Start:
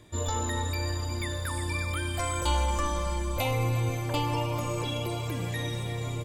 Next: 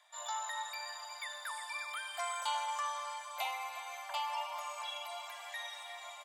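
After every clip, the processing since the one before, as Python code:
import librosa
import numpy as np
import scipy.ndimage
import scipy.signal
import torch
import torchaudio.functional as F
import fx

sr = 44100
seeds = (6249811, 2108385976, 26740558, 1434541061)

y = scipy.signal.sosfilt(scipy.signal.butter(12, 650.0, 'highpass', fs=sr, output='sos'), x)
y = fx.high_shelf(y, sr, hz=6500.0, db=-7.5)
y = fx.notch(y, sr, hz=2500.0, q=13.0)
y = y * librosa.db_to_amplitude(-4.0)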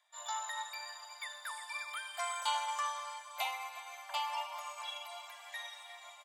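y = fx.low_shelf(x, sr, hz=450.0, db=-7.5)
y = fx.upward_expand(y, sr, threshold_db=-57.0, expansion=1.5)
y = y * librosa.db_to_amplitude(3.5)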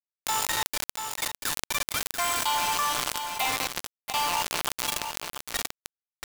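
y = fx.quant_dither(x, sr, seeds[0], bits=6, dither='none')
y = y + 10.0 ** (-23.5 / 20.0) * np.pad(y, (int(687 * sr / 1000.0), 0))[:len(y)]
y = fx.env_flatten(y, sr, amount_pct=70)
y = y * librosa.db_to_amplitude(5.5)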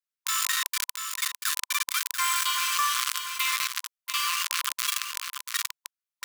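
y = fx.brickwall_highpass(x, sr, low_hz=1000.0)
y = y * librosa.db_to_amplitude(2.0)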